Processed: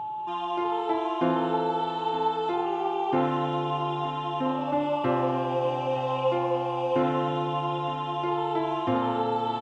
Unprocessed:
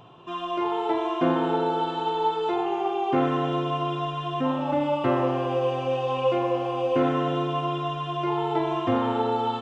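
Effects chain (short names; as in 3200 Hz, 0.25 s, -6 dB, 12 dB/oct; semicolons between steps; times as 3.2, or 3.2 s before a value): whine 860 Hz -28 dBFS; echo 0.918 s -15 dB; gain -2.5 dB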